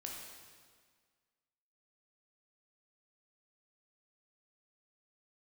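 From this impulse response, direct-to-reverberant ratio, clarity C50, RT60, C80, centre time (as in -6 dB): -1.5 dB, 1.0 dB, 1.7 s, 3.0 dB, 79 ms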